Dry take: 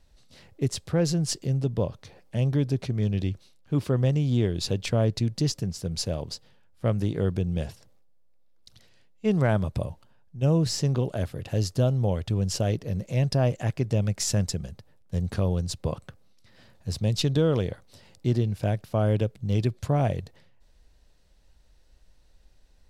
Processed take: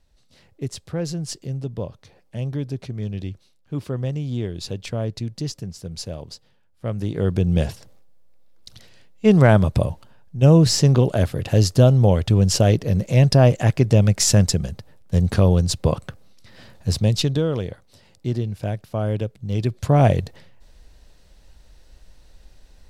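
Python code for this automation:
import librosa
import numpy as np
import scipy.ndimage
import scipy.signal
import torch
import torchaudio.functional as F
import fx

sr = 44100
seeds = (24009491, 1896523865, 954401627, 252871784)

y = fx.gain(x, sr, db=fx.line((6.85, -2.5), (7.54, 9.5), (16.9, 9.5), (17.49, 0.0), (19.49, 0.0), (20.06, 10.0)))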